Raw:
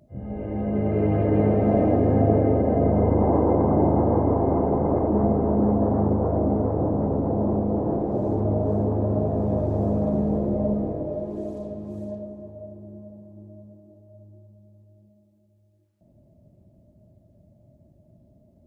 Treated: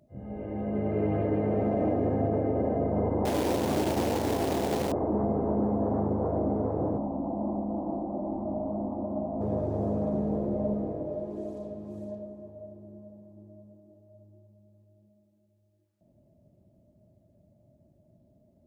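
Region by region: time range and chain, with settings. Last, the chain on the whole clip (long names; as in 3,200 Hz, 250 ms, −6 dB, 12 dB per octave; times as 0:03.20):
0:03.25–0:04.92: double-tracking delay 35 ms −9 dB + log-companded quantiser 4 bits
0:06.98–0:09.41: Butterworth low-pass 2,100 Hz + phaser with its sweep stopped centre 440 Hz, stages 6
whole clip: low-shelf EQ 130 Hz −6.5 dB; brickwall limiter −14.5 dBFS; level −4 dB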